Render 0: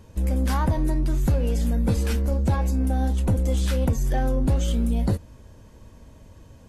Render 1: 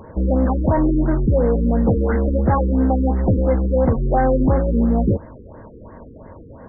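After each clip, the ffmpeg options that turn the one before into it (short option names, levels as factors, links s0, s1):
-filter_complex "[0:a]asplit=2[s0][s1];[s1]highpass=f=720:p=1,volume=8.91,asoftclip=type=tanh:threshold=0.2[s2];[s0][s2]amix=inputs=2:normalize=0,lowpass=f=1100:p=1,volume=0.501,afftfilt=real='re*lt(b*sr/1024,490*pow(2200/490,0.5+0.5*sin(2*PI*2.9*pts/sr)))':imag='im*lt(b*sr/1024,490*pow(2200/490,0.5+0.5*sin(2*PI*2.9*pts/sr)))':win_size=1024:overlap=0.75,volume=2.24"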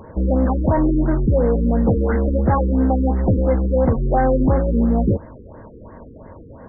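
-af anull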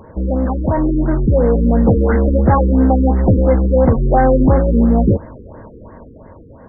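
-af "dynaudnorm=f=220:g=11:m=2.11"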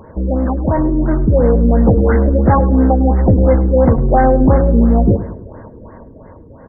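-filter_complex "[0:a]asplit=2[s0][s1];[s1]adelay=105,lowpass=f=1000:p=1,volume=0.237,asplit=2[s2][s3];[s3]adelay=105,lowpass=f=1000:p=1,volume=0.48,asplit=2[s4][s5];[s5]adelay=105,lowpass=f=1000:p=1,volume=0.48,asplit=2[s6][s7];[s7]adelay=105,lowpass=f=1000:p=1,volume=0.48,asplit=2[s8][s9];[s9]adelay=105,lowpass=f=1000:p=1,volume=0.48[s10];[s0][s2][s4][s6][s8][s10]amix=inputs=6:normalize=0,volume=1.12"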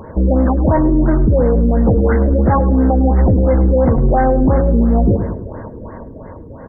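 -af "alimiter=limit=0.299:level=0:latency=1:release=94,volume=1.78"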